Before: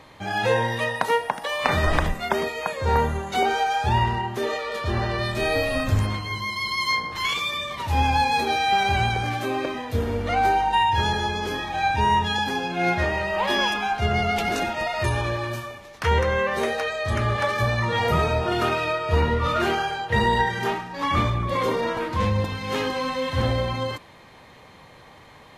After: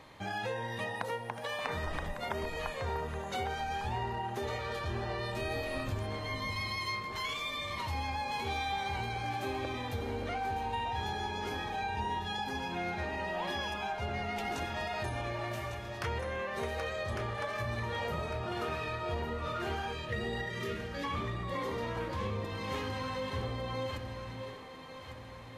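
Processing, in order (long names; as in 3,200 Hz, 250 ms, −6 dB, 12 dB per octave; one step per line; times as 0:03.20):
time-frequency box erased 0:19.92–0:21.04, 630–1,600 Hz
downward compressor 4 to 1, threshold −29 dBFS, peak gain reduction 12 dB
on a send: delay that swaps between a low-pass and a high-pass 576 ms, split 860 Hz, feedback 65%, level −5 dB
on the sum: level −6 dB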